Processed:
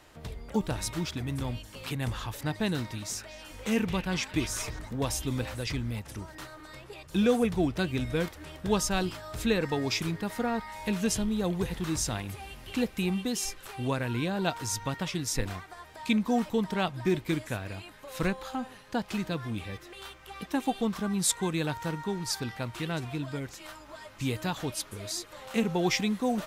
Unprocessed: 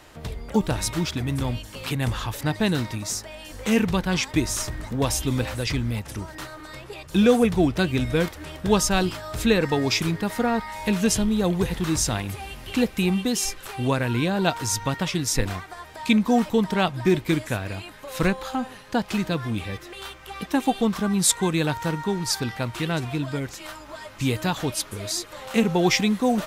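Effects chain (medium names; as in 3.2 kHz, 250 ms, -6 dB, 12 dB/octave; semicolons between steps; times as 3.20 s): 2.71–4.79 s: repeats whose band climbs or falls 229 ms, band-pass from 2.9 kHz, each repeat -0.7 oct, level -5 dB; trim -7 dB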